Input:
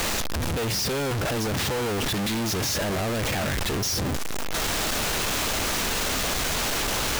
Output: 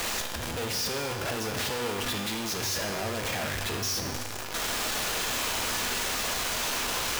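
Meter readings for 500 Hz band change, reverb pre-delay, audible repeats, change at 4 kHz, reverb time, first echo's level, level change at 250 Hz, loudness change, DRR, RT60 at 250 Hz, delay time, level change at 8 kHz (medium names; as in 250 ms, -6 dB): -5.0 dB, 3 ms, no echo, -3.0 dB, 1.6 s, no echo, -7.5 dB, -4.0 dB, 3.0 dB, 1.6 s, no echo, -3.0 dB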